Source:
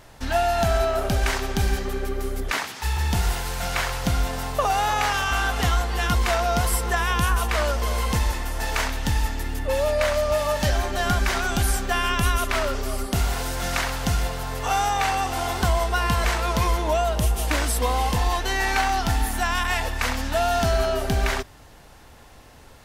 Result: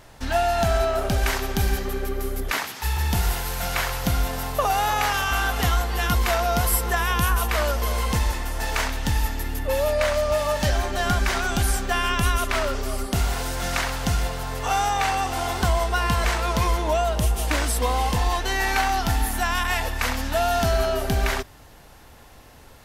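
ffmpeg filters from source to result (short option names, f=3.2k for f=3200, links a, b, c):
-af "asetnsamples=n=441:p=0,asendcmd='1.18 equalizer g 10.5;7.92 equalizer g 1.5;9.14 equalizer g 10;9.93 equalizer g -1;18.52 equalizer g 6.5',equalizer=f=12k:t=o:w=0.21:g=0"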